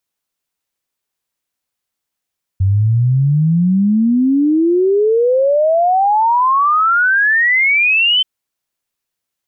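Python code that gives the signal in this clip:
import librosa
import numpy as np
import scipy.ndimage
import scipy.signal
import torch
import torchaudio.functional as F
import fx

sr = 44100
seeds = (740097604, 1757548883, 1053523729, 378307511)

y = fx.ess(sr, length_s=5.63, from_hz=93.0, to_hz=3100.0, level_db=-9.5)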